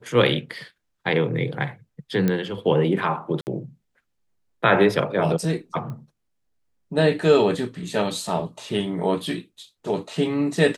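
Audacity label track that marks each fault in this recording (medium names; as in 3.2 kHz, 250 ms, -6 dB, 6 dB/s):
2.280000	2.280000	pop -10 dBFS
3.410000	3.470000	dropout 59 ms
5.900000	5.900000	pop -25 dBFS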